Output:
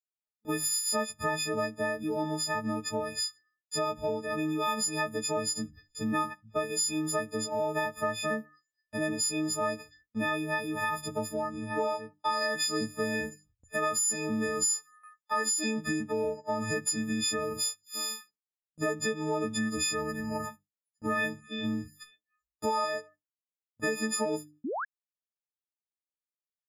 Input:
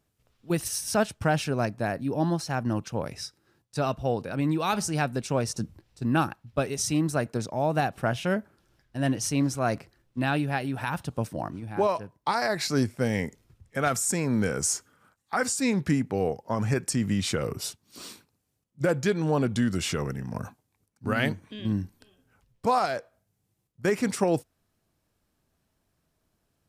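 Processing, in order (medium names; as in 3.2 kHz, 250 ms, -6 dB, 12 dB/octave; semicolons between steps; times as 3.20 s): partials quantised in pitch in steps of 6 st; spectral noise reduction 24 dB; hum notches 50/100/150/200/250/300 Hz; gate with hold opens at -49 dBFS; peaking EQ 630 Hz +7.5 dB 1.6 oct; comb 3.9 ms, depth 47%; compression 3:1, threshold -31 dBFS, peak gain reduction 15 dB; painted sound rise, 24.64–24.85 s, 220–1800 Hz -33 dBFS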